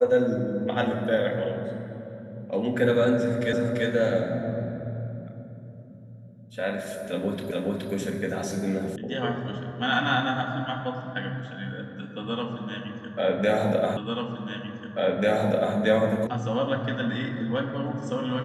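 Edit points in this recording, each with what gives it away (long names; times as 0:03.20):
0:03.53: the same again, the last 0.34 s
0:07.51: the same again, the last 0.42 s
0:08.96: cut off before it has died away
0:13.97: the same again, the last 1.79 s
0:16.27: cut off before it has died away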